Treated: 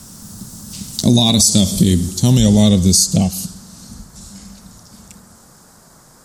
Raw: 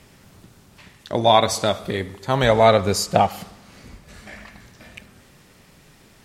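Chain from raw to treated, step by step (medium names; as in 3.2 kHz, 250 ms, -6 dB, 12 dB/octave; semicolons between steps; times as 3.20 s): Doppler pass-by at 1.44 s, 24 m/s, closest 8 m; FFT filter 140 Hz 0 dB, 210 Hz +6 dB, 420 Hz -14 dB, 1.5 kHz -29 dB, 5.1 kHz +7 dB, 7.8 kHz +12 dB, 12 kHz +8 dB; compression 4:1, threshold -29 dBFS, peak gain reduction 13.5 dB; band noise 220–1500 Hz -75 dBFS; loudness maximiser +24 dB; trim -1 dB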